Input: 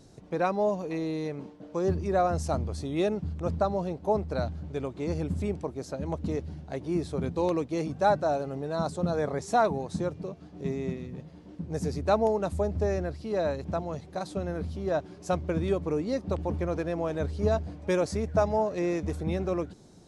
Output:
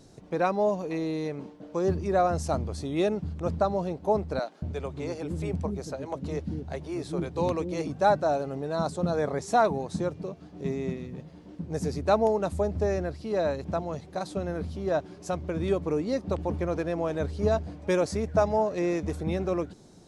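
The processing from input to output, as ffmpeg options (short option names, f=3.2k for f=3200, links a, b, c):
-filter_complex "[0:a]asettb=1/sr,asplit=3[a][b][c];[a]atrim=end=4.394[d];[b]atrim=start=4.39:end=7.87,asetpts=PTS-STARTPTS,afade=t=in:d=0.004:c=qsin,afade=t=out:st=3.476:d=0.004:c=qsin,acrossover=split=330[e][f];[e]adelay=230[g];[g][f]amix=inputs=2:normalize=0,atrim=end_sample=153468[h];[c]atrim=start=7.866[i];[d][h]acrossfade=d=0.004:c1=hsin:c2=qsin[j];[j][i]acrossfade=d=0.004:c1=qsin:c2=hsin,asettb=1/sr,asplit=3[k][l][m];[k]atrim=end=15.164[n];[l]atrim=start=15.16:end=15.6,asetpts=PTS-STARTPTS,afade=t=in:d=0.004:c=qsin,afade=t=out:st=0.436:d=0.004:c=qsin,acompressor=threshold=-32dB:ratio=1.5:attack=3.2:release=140:knee=1:detection=peak[o];[m]atrim=start=15.596[p];[n][o]acrossfade=d=0.004:c1=hsin:c2=qsin[q];[q][p]acrossfade=d=0.004:c1=qsin:c2=hsin,equalizer=f=72:t=o:w=2.1:g=-2.5,volume=1.5dB"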